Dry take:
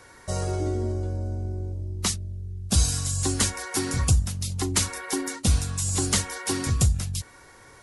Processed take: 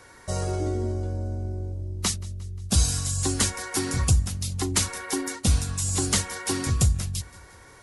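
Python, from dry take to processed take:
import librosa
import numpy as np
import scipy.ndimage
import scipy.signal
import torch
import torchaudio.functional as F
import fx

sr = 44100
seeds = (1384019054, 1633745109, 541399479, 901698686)

y = fx.echo_feedback(x, sr, ms=177, feedback_pct=54, wet_db=-22)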